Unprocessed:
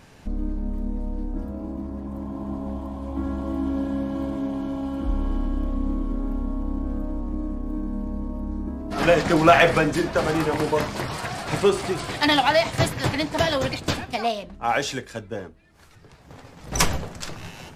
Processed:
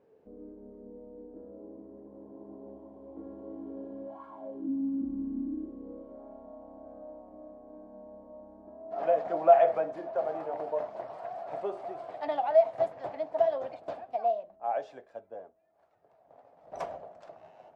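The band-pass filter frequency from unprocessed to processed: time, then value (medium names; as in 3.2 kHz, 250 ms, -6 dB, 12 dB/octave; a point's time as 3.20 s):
band-pass filter, Q 6.6
4.04 s 450 Hz
4.25 s 1.3 kHz
4.70 s 260 Hz
5.40 s 260 Hz
6.21 s 660 Hz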